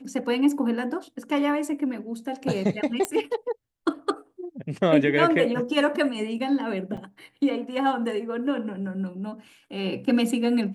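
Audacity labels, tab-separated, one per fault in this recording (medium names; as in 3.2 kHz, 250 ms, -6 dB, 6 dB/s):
3.050000	3.050000	pop -10 dBFS
6.970000	6.970000	dropout 4.8 ms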